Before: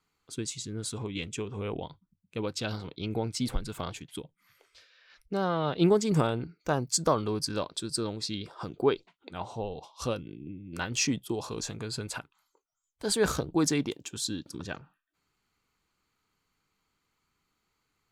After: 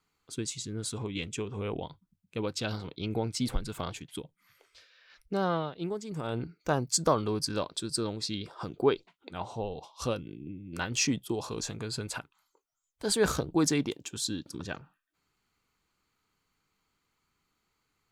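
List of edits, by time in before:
5.55–6.38 s: dip -12 dB, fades 0.16 s

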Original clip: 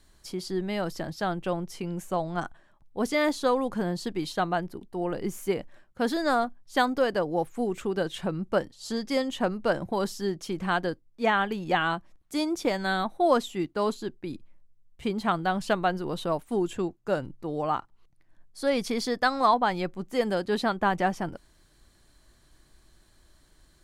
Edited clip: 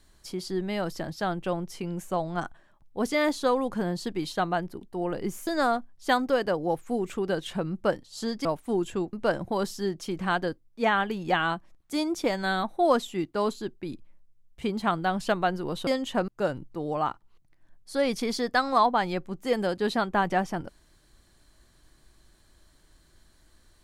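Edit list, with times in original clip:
5.47–6.15 s: delete
9.13–9.54 s: swap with 16.28–16.96 s

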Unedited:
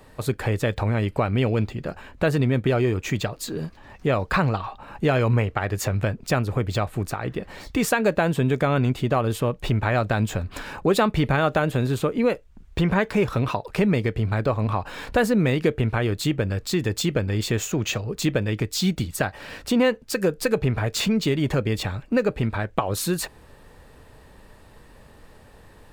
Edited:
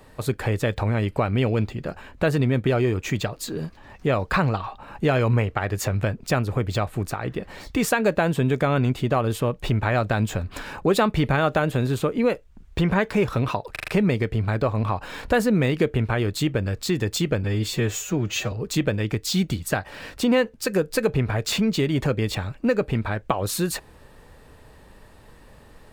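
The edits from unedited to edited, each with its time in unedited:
13.72 s: stutter 0.04 s, 5 plays
17.28–18.00 s: stretch 1.5×

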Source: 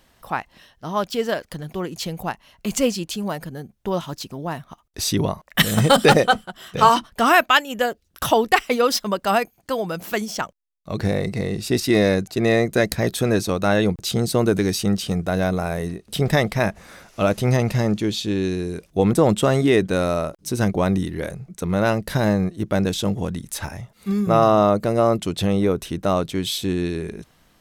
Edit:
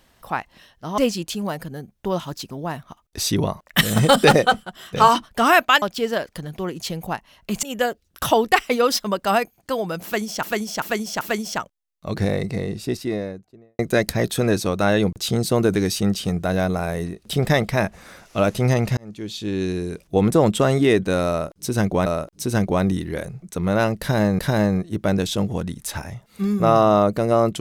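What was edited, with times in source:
0.98–2.79 s: move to 7.63 s
10.04–10.43 s: loop, 4 plays
11.10–12.62 s: studio fade out
17.80–18.54 s: fade in
20.12–20.89 s: loop, 2 plays
22.06–22.45 s: loop, 2 plays

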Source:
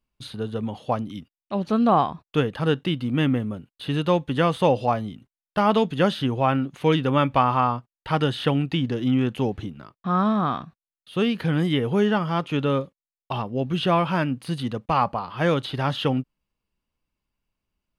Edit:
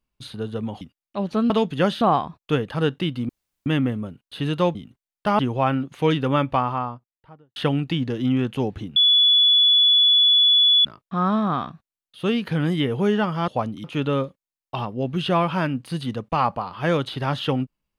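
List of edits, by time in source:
0.81–1.17 s: move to 12.41 s
3.14 s: insert room tone 0.37 s
4.23–5.06 s: delete
5.70–6.21 s: move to 1.86 s
7.04–8.38 s: studio fade out
9.78 s: add tone 3.42 kHz -12.5 dBFS 1.89 s

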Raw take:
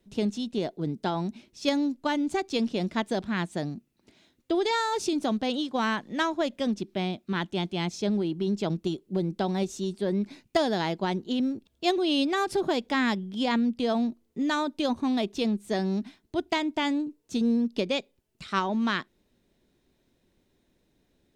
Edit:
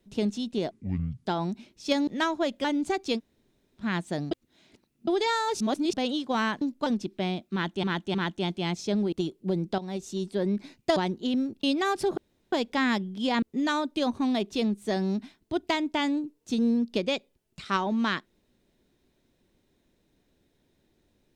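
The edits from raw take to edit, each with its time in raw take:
0.71–1.02 s: speed 57%
1.84–2.09 s: swap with 6.06–6.63 s
2.62–3.25 s: room tone, crossfade 0.06 s
3.76–4.52 s: reverse
5.05–5.38 s: reverse
7.29–7.60 s: loop, 3 plays
8.27–8.79 s: delete
9.45–9.90 s: fade in, from -12 dB
10.63–11.02 s: delete
11.69–12.15 s: delete
12.69 s: insert room tone 0.35 s
13.59–14.25 s: delete

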